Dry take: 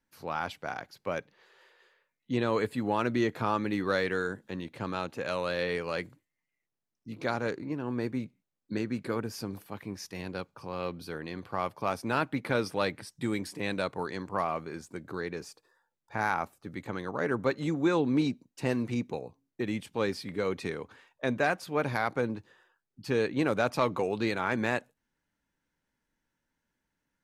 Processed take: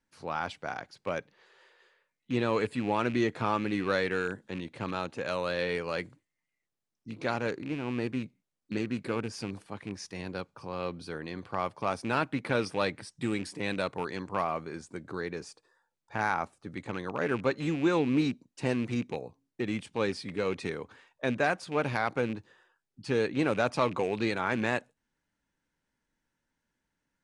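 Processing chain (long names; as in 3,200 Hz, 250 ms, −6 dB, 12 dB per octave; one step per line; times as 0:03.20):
loose part that buzzes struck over −37 dBFS, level −33 dBFS
downsampling to 22,050 Hz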